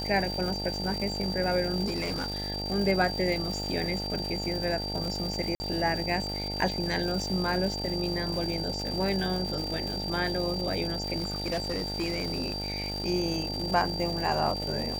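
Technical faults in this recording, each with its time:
buzz 50 Hz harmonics 18 -36 dBFS
crackle 460/s -34 dBFS
tone 4700 Hz -34 dBFS
1.85–2.5 clipped -26.5 dBFS
5.55–5.6 gap 50 ms
11.17–13.06 clipped -25.5 dBFS

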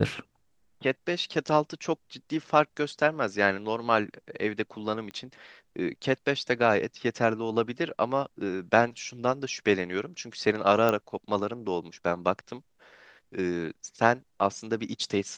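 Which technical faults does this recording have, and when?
5.11 pop -26 dBFS
10.89 pop -12 dBFS

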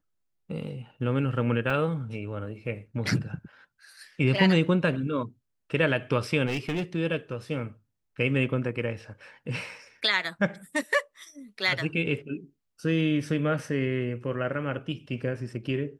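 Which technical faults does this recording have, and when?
1.7 gap 3 ms
6.46–6.83 clipped -25 dBFS

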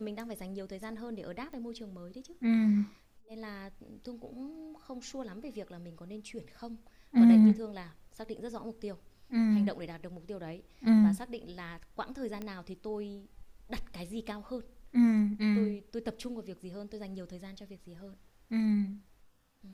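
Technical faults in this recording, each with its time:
1.53 pop -34 dBFS
12.42 pop -26 dBFS

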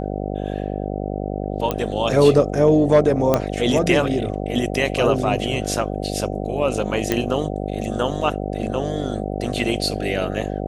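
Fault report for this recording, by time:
buzz 50 Hz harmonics 15 -26 dBFS
1.71 pop -8 dBFS
3.34 pop -4 dBFS
7.12 pop -5 dBFS

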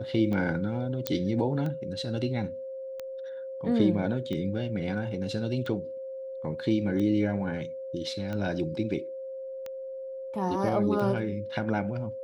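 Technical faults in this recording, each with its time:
tick 45 rpm -23 dBFS
tone 530 Hz -35 dBFS
1.07 pop -11 dBFS

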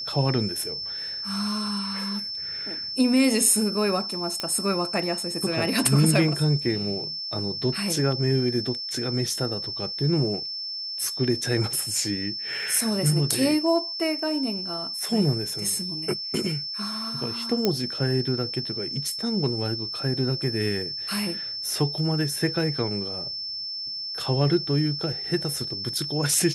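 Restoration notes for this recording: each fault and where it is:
tone 5300 Hz -30 dBFS
4.4 pop -12 dBFS
17.65 pop -8 dBFS

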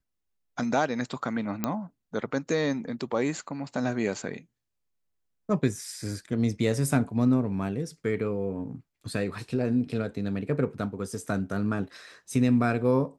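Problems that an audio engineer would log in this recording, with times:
1.64 pop -12 dBFS

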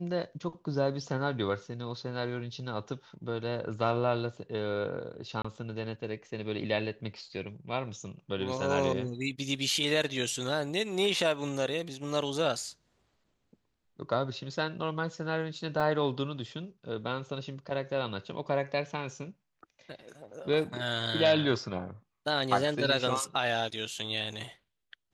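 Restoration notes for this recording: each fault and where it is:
5.42–5.45 gap 25 ms
15.8 gap 4.4 ms

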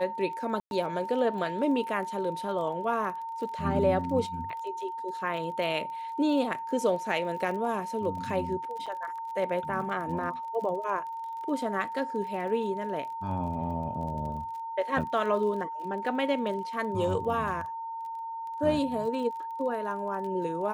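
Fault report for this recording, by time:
crackle 29/s -38 dBFS
tone 910 Hz -34 dBFS
0.6–0.71 gap 0.111 s
8.86–8.87 gap 6.2 ms

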